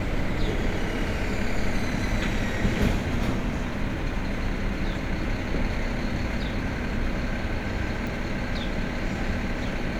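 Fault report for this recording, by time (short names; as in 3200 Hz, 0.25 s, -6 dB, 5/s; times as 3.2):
8.07 pop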